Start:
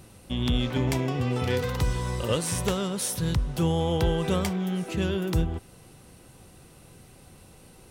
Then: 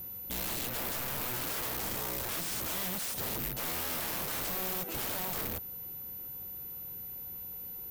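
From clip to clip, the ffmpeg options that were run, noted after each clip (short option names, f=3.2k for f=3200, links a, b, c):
-af "aeval=exprs='val(0)+0.0178*sin(2*PI*14000*n/s)':c=same,aeval=exprs='(mod(18.8*val(0)+1,2)-1)/18.8':c=same,volume=-5dB"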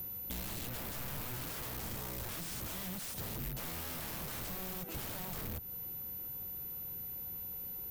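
-filter_complex "[0:a]acrossover=split=200[a][b];[b]acompressor=threshold=-43dB:ratio=4[c];[a][c]amix=inputs=2:normalize=0,volume=1.5dB"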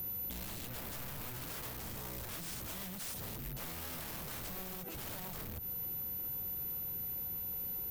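-af "alimiter=level_in=15dB:limit=-24dB:level=0:latency=1:release=57,volume=-15dB,volume=4.5dB"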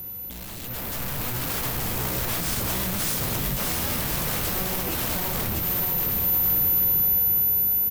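-filter_complex "[0:a]dynaudnorm=f=130:g=13:m=10dB,asplit=2[a][b];[b]aecho=0:1:650|1105|1424|1646|1803:0.631|0.398|0.251|0.158|0.1[c];[a][c]amix=inputs=2:normalize=0,volume=4.5dB"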